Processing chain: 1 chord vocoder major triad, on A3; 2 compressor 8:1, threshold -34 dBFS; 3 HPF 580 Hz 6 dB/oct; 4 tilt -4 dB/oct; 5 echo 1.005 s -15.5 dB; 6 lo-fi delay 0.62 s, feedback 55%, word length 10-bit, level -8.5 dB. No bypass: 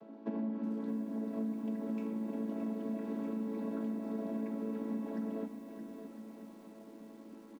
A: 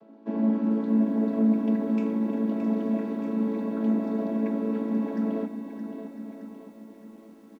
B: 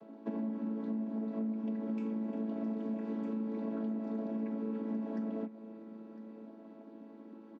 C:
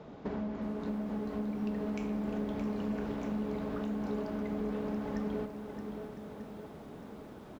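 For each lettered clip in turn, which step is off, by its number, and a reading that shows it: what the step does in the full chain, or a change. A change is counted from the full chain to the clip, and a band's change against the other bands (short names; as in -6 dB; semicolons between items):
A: 2, momentary loudness spread change +2 LU; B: 6, loudness change +1.5 LU; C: 1, 250 Hz band -5.5 dB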